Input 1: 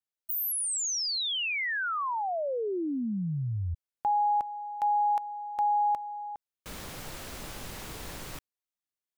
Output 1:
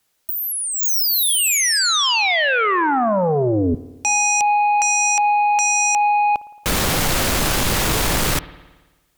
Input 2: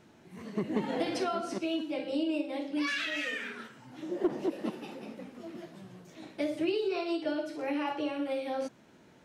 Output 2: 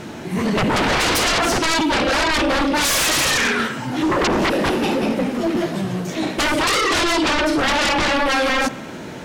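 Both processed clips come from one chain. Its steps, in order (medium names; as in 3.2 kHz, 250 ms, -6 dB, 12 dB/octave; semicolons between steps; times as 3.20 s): sine folder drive 18 dB, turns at -19 dBFS; spring tank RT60 1.2 s, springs 55 ms, chirp 35 ms, DRR 16 dB; trim +4 dB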